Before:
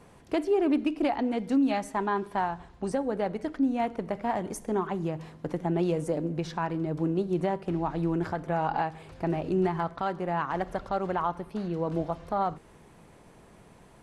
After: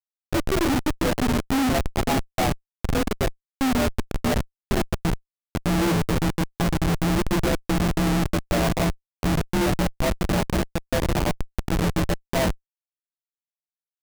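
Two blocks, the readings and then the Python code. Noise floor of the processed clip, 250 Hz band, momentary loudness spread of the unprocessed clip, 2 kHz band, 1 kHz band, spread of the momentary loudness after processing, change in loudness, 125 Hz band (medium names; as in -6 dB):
under -85 dBFS, +4.5 dB, 6 LU, +9.5 dB, +1.0 dB, 6 LU, +5.0 dB, +9.5 dB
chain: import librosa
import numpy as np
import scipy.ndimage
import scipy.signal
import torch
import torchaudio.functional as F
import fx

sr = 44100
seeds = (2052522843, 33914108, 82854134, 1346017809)

y = fx.partial_stretch(x, sr, pct=85)
y = fx.echo_diffused(y, sr, ms=551, feedback_pct=53, wet_db=-11)
y = fx.cheby_harmonics(y, sr, harmonics=(3, 4, 7, 8), levels_db=(-34, -40, -32, -23), full_scale_db=-16.5)
y = fx.doubler(y, sr, ms=12.0, db=-3)
y = fx.schmitt(y, sr, flips_db=-27.5)
y = F.gain(torch.from_numpy(y), 8.5).numpy()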